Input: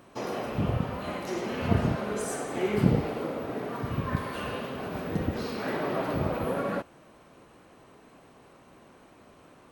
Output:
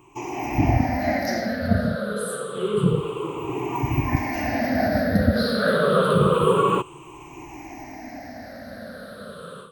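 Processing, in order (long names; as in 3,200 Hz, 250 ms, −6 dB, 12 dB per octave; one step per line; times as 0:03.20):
rippled gain that drifts along the octave scale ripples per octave 0.69, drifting −0.28 Hz, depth 24 dB
automatic gain control gain up to 16 dB
level −5 dB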